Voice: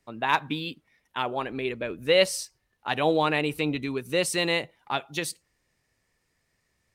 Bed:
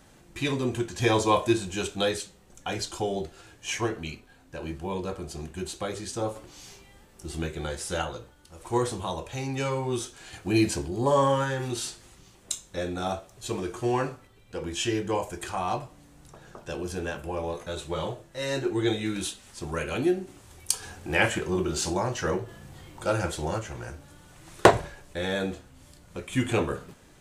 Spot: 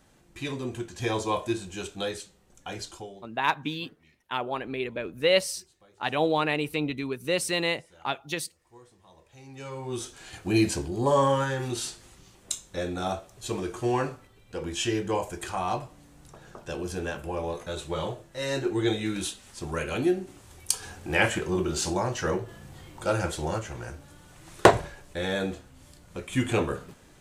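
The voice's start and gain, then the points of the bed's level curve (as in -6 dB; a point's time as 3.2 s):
3.15 s, -1.5 dB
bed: 2.9 s -5.5 dB
3.38 s -27 dB
8.99 s -27 dB
10.1 s 0 dB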